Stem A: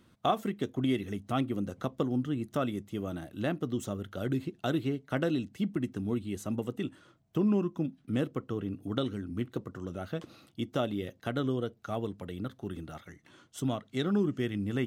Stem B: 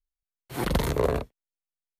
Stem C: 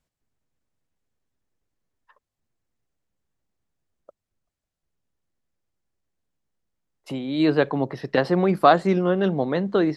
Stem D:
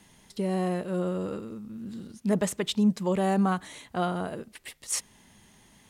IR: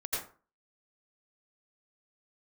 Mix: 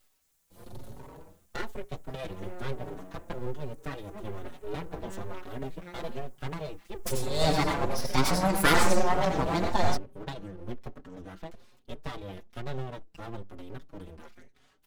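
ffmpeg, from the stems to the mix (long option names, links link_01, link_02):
-filter_complex "[0:a]adelay=1300,volume=-2.5dB[link_01];[1:a]equalizer=frequency=1700:width_type=o:width=1.4:gain=-13.5,acompressor=threshold=-33dB:ratio=1.5,volume=-17dB,asplit=2[link_02][link_03];[link_03]volume=-6dB[link_04];[2:a]aexciter=amount=11.2:drive=7.9:freq=5000,volume=-4dB,asplit=2[link_05][link_06];[link_06]volume=-4dB[link_07];[3:a]lowpass=frequency=2300:width=0.5412,lowpass=frequency=2300:width=1.3066,adelay=1850,volume=-13.5dB,asplit=2[link_08][link_09];[link_09]volume=-17.5dB[link_10];[4:a]atrim=start_sample=2205[link_11];[link_04][link_07][link_10]amix=inputs=3:normalize=0[link_12];[link_12][link_11]afir=irnorm=-1:irlink=0[link_13];[link_01][link_02][link_05][link_08][link_13]amix=inputs=5:normalize=0,lowshelf=frequency=170:gain=8,aeval=exprs='abs(val(0))':channel_layout=same,asplit=2[link_14][link_15];[link_15]adelay=5,afreqshift=1.1[link_16];[link_14][link_16]amix=inputs=2:normalize=1"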